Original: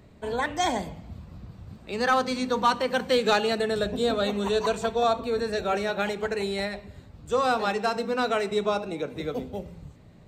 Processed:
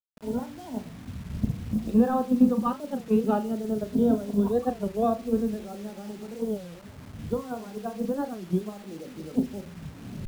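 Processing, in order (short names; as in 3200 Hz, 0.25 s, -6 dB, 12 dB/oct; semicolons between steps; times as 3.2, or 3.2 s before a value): moving spectral ripple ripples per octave 1.7, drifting +0.32 Hz, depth 9 dB; recorder AGC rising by 29 dB/s; bell 230 Hz +12.5 dB 0.59 oct; notches 60/120/180/240/300 Hz; in parallel at -1.5 dB: limiter -16.5 dBFS, peak gain reduction 8.5 dB; on the sum: gate -14 dBFS, range -17 dB; running mean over 21 samples; low shelf 480 Hz +6.5 dB; bit-crush 7-bit; on a send: flutter echo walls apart 6.4 m, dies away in 0.22 s; on the sum: record warp 33 1/3 rpm, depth 250 cents; gain -7 dB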